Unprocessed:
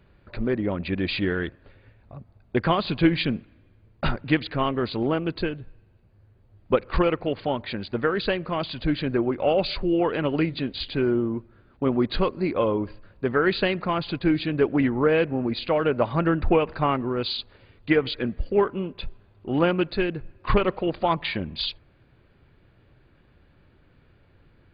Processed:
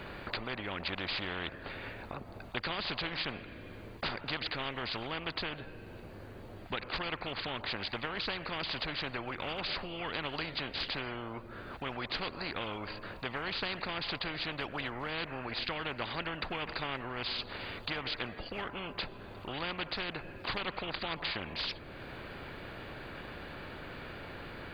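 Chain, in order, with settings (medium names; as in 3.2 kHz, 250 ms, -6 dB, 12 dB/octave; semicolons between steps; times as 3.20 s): compression 1.5:1, threshold -49 dBFS, peak gain reduction 12.5 dB; spectrum-flattening compressor 4:1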